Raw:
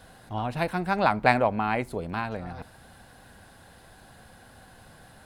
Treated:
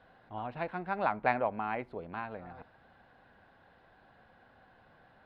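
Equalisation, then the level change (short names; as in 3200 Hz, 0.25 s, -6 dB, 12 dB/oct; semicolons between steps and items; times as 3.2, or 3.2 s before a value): air absorption 360 m; low shelf 230 Hz -11.5 dB; high shelf 7100 Hz -8 dB; -5.0 dB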